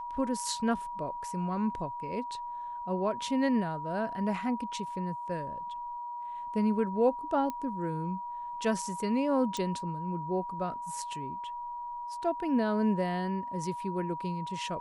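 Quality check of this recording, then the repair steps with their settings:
whistle 960 Hz −36 dBFS
0:07.50: click −22 dBFS
0:09.57: click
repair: click removal
notch filter 960 Hz, Q 30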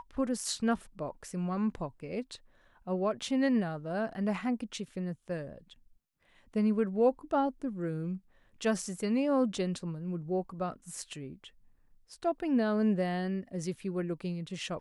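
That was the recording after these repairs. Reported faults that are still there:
0:09.57: click

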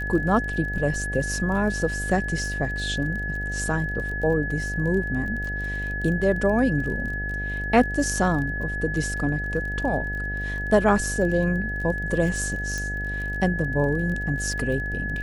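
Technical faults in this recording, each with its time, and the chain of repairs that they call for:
mains buzz 50 Hz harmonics 16 −31 dBFS
surface crackle 24 per second −32 dBFS
whistle 1,700 Hz −29 dBFS
0:12.78: click −17 dBFS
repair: click removal
hum removal 50 Hz, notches 16
notch filter 1,700 Hz, Q 30

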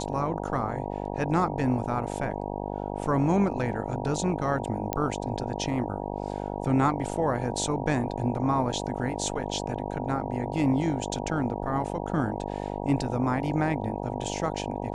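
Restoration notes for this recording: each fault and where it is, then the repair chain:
mains buzz 50 Hz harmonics 19 −33 dBFS
0:04.93: click −11 dBFS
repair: click removal
hum removal 50 Hz, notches 19

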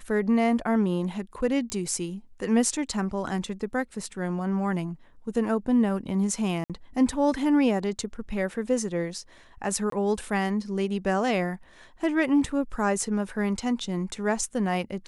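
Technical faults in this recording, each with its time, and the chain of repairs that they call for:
0:01.70: click −17 dBFS
0:06.64–0:06.70: drop-out 57 ms
0:09.90–0:09.92: drop-out 23 ms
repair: click removal
repair the gap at 0:06.64, 57 ms
repair the gap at 0:09.90, 23 ms

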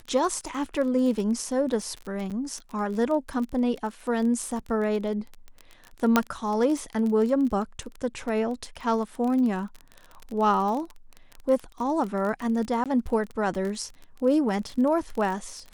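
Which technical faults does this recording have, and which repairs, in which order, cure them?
surface crackle 25 per second −30 dBFS
0:02.30–0:02.31: drop-out 6.7 ms
0:06.16: click −5 dBFS
0:12.84–0:12.86: drop-out 17 ms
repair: click removal
repair the gap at 0:02.30, 6.7 ms
repair the gap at 0:12.84, 17 ms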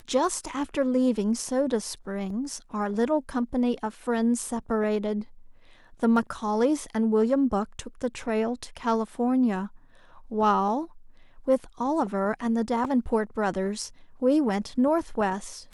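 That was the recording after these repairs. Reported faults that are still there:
0:06.16: click

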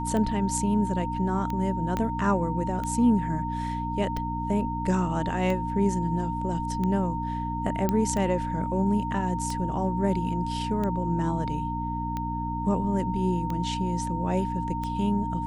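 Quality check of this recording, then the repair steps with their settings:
mains hum 60 Hz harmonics 5 −32 dBFS
scratch tick 45 rpm −19 dBFS
whistle 920 Hz −31 dBFS
0:01.97: click −15 dBFS
0:07.89: click −12 dBFS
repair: click removal
hum removal 60 Hz, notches 5
notch filter 920 Hz, Q 30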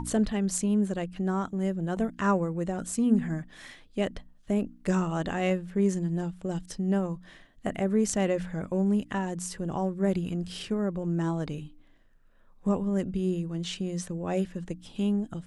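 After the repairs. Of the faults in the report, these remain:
0:01.97: click
0:07.89: click

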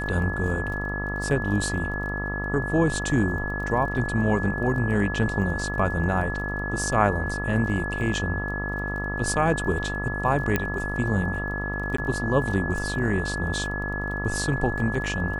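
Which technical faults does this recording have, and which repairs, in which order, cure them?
mains buzz 50 Hz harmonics 27 −31 dBFS
surface crackle 22 per second −35 dBFS
whistle 1,700 Hz −30 dBFS
0:10.56: click −9 dBFS
0:11.97–0:11.98: drop-out 14 ms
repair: click removal
hum removal 50 Hz, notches 27
notch filter 1,700 Hz, Q 30
repair the gap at 0:11.97, 14 ms

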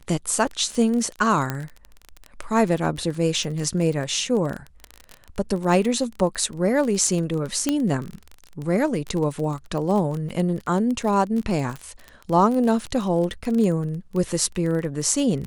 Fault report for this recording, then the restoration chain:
surface crackle 27 per second −26 dBFS
0:01.50: click −11 dBFS
0:07.69: click −7 dBFS
0:10.29–0:10.30: drop-out 5.9 ms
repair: click removal
repair the gap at 0:10.29, 5.9 ms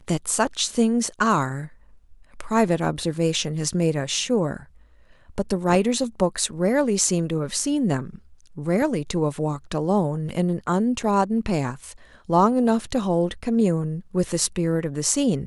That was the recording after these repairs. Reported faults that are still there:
none of them is left

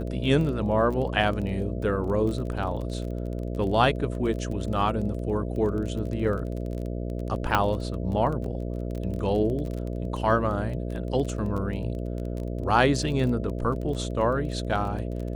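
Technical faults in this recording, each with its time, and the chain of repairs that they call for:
mains buzz 60 Hz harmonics 11 −31 dBFS
surface crackle 21 per second −32 dBFS
0:07.55: click −8 dBFS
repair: click removal
hum removal 60 Hz, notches 11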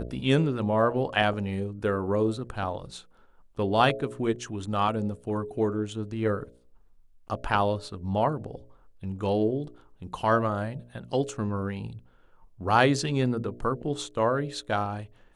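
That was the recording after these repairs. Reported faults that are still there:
none of them is left

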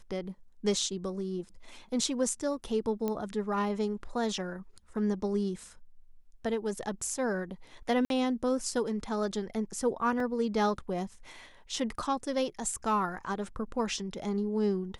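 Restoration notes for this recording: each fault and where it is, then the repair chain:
0:03.08: click −19 dBFS
0:08.05–0:08.10: drop-out 52 ms
0:10.20: drop-out 2.2 ms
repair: click removal
repair the gap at 0:08.05, 52 ms
repair the gap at 0:10.20, 2.2 ms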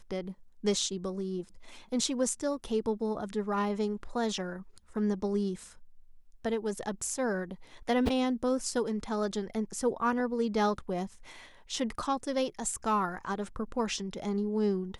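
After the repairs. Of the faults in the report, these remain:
none of them is left

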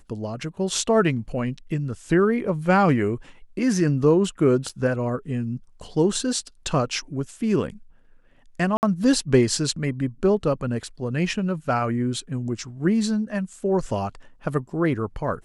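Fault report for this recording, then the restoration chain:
0:04.69: drop-out 4.5 ms
0:08.77–0:08.83: drop-out 59 ms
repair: repair the gap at 0:04.69, 4.5 ms
repair the gap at 0:08.77, 59 ms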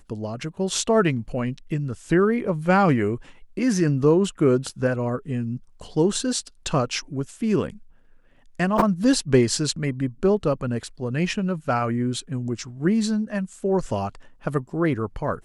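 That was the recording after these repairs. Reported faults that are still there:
none of them is left

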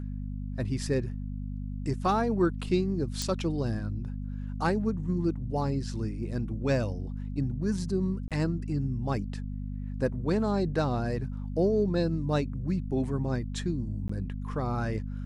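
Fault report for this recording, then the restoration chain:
mains hum 50 Hz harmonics 5 −35 dBFS
0:03.22: click
0:08.28–0:08.31: drop-out 27 ms
0:14.08–0:14.09: drop-out 14 ms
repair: click removal
hum removal 50 Hz, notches 5
repair the gap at 0:08.28, 27 ms
repair the gap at 0:14.08, 14 ms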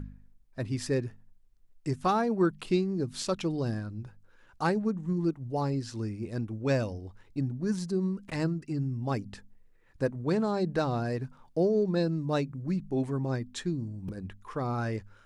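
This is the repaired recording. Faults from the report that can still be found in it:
0:03.22: click

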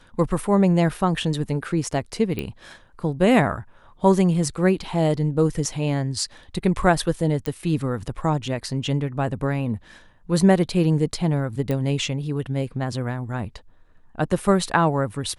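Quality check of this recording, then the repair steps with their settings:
0:02.39: click −15 dBFS
0:07.46: click −12 dBFS
0:11.71: click −14 dBFS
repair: click removal

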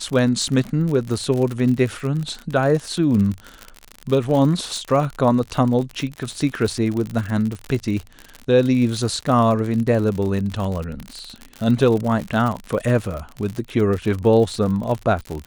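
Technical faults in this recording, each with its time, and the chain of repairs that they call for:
surface crackle 58 per second −24 dBFS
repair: click removal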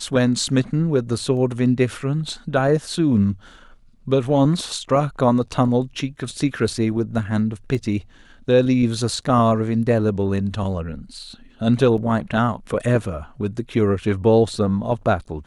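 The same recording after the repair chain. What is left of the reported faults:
none of them is left

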